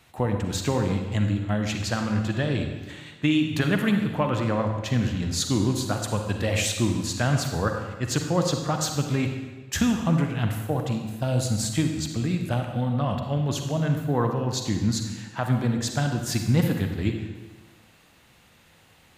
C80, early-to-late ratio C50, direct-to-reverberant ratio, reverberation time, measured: 6.5 dB, 5.0 dB, 4.0 dB, 1.3 s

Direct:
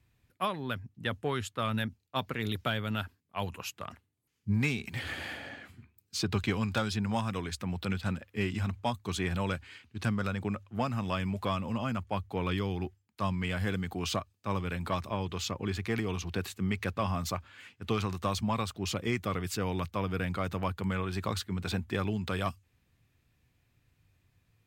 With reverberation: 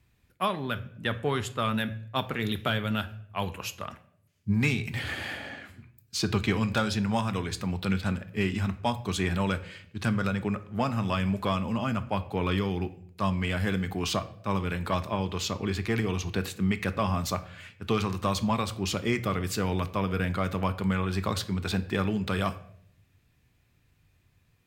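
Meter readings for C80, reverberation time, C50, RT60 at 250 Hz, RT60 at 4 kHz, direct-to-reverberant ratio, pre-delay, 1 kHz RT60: 18.5 dB, 0.65 s, 15.5 dB, 0.85 s, 0.45 s, 10.5 dB, 5 ms, 0.55 s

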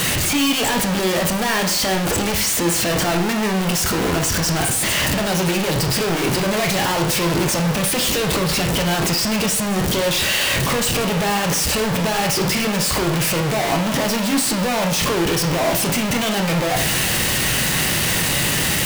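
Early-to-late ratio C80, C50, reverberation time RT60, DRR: 11.5 dB, 8.5 dB, 0.55 s, 3.0 dB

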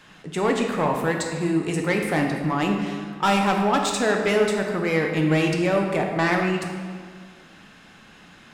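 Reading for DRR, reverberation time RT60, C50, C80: 1.5 dB, 1.9 s, 4.0 dB, 5.0 dB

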